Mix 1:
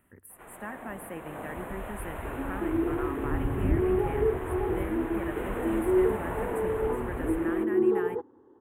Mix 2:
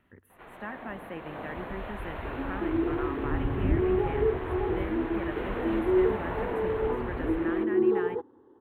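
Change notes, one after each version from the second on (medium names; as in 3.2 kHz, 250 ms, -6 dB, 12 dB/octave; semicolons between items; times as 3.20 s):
master: add resonant high shelf 6.3 kHz -13 dB, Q 3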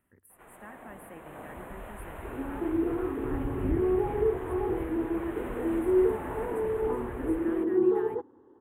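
speech -8.5 dB; first sound -4.5 dB; master: add resonant high shelf 6.3 kHz +13 dB, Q 3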